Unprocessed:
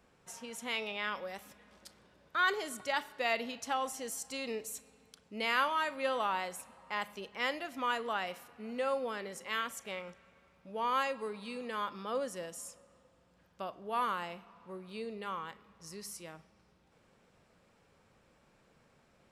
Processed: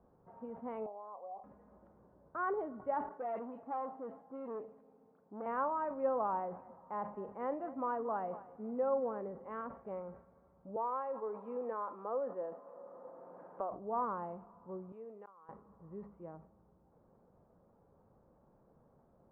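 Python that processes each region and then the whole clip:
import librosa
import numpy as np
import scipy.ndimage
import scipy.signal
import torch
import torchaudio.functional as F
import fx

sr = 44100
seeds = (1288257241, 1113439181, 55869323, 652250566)

y = fx.chain(x, sr, fx.formant_cascade(vowel='a'),
    fx.peak_eq(hz=450.0, db=11.0, octaves=1.1),
    fx.band_squash(depth_pct=100), at=(0.86, 1.44))
y = fx.chain(y, sr, fx.highpass(hz=200.0, slope=12),
    fx.dispersion(late='highs', ms=51.0, hz=2700.0),
    fx.transformer_sat(knee_hz=3400.0), at=(3.09, 5.46))
y = fx.chain(y, sr, fx.peak_eq(hz=65.0, db=-13.5, octaves=0.4),
    fx.echo_single(ms=229, db=-17.5), at=(6.39, 9.24))
y = fx.chain(y, sr, fx.highpass(hz=420.0, slope=12),
    fx.band_squash(depth_pct=70), at=(10.76, 13.71))
y = fx.chain(y, sr, fx.highpass(hz=1100.0, slope=6),
    fx.auto_swell(attack_ms=596.0), at=(14.92, 15.49))
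y = scipy.signal.sosfilt(scipy.signal.cheby2(4, 80, 5700.0, 'lowpass', fs=sr, output='sos'), y)
y = fx.sustainer(y, sr, db_per_s=120.0)
y = y * 10.0 ** (1.0 / 20.0)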